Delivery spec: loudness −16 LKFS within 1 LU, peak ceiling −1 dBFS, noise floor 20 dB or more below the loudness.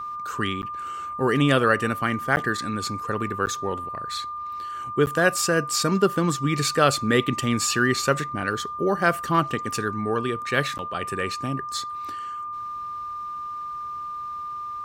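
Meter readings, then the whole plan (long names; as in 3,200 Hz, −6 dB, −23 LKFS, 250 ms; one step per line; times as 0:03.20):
number of dropouts 5; longest dropout 9.7 ms; interfering tone 1,200 Hz; level of the tone −30 dBFS; integrated loudness −25.0 LKFS; sample peak −5.0 dBFS; target loudness −16.0 LKFS
→ repair the gap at 0:00.62/0:02.36/0:03.46/0:05.06/0:10.78, 9.7 ms
notch filter 1,200 Hz, Q 30
level +9 dB
brickwall limiter −1 dBFS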